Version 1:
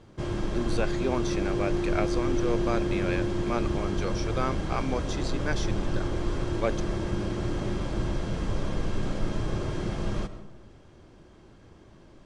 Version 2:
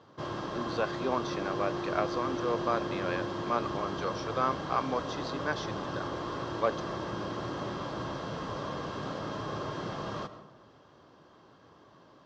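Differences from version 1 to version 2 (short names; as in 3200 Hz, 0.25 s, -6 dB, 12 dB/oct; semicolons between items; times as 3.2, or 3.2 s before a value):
speech: add air absorption 69 m; master: add speaker cabinet 190–5600 Hz, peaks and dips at 210 Hz -7 dB, 350 Hz -7 dB, 1100 Hz +7 dB, 2300 Hz -8 dB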